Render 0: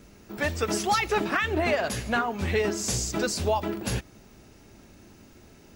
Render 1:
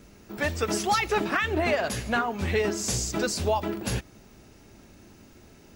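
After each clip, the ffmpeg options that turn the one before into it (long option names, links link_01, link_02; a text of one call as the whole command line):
ffmpeg -i in.wav -af anull out.wav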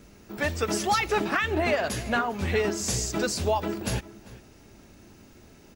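ffmpeg -i in.wav -filter_complex "[0:a]asplit=2[link_01][link_02];[link_02]adelay=396.5,volume=-17dB,highshelf=frequency=4000:gain=-8.92[link_03];[link_01][link_03]amix=inputs=2:normalize=0" out.wav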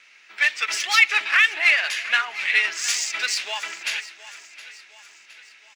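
ffmpeg -i in.wav -af "adynamicsmooth=sensitivity=3.5:basefreq=4400,highpass=frequency=2200:width_type=q:width=2.4,aecho=1:1:715|1430|2145|2860:0.141|0.0706|0.0353|0.0177,volume=8.5dB" out.wav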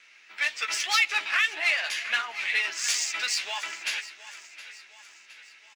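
ffmpeg -i in.wav -filter_complex "[0:a]asplit=2[link_01][link_02];[link_02]adelay=13,volume=-7dB[link_03];[link_01][link_03]amix=inputs=2:normalize=0,acrossover=split=1400|2700[link_04][link_05][link_06];[link_05]acompressor=threshold=-31dB:ratio=6[link_07];[link_04][link_07][link_06]amix=inputs=3:normalize=0,volume=-3.5dB" out.wav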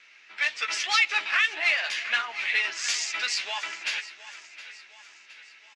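ffmpeg -i in.wav -af "lowpass=6100,volume=1dB" out.wav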